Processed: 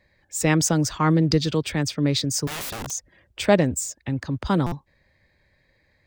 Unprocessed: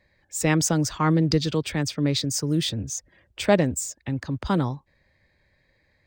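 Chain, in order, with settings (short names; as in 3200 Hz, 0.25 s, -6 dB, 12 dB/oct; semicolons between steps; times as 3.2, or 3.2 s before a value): 2.47–2.91 wrapped overs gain 28.5 dB; stuck buffer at 4.66, samples 256, times 9; gain +1.5 dB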